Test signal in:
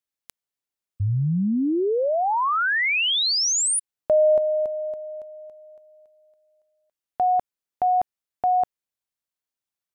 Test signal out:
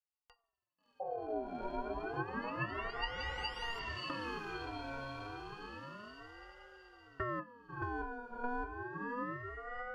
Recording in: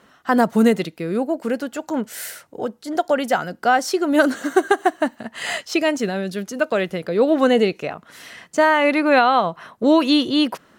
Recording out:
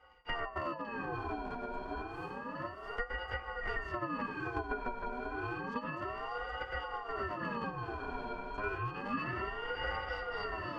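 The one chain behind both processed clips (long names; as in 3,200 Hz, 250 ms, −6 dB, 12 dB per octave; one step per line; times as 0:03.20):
sub-harmonics by changed cycles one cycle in 3, inverted
resonances in every octave A#, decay 0.18 s
feedback delay with all-pass diffusion 662 ms, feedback 44%, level −4 dB
spring reverb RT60 1.5 s, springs 46 ms, DRR 18 dB
downward compressor 2.5 to 1, threshold −51 dBFS
dynamic equaliser 1,300 Hz, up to +5 dB, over −60 dBFS, Q 1.1
hum removal 47.12 Hz, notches 9
ring modulator whose carrier an LFO sweeps 740 Hz, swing 35%, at 0.3 Hz
level +9.5 dB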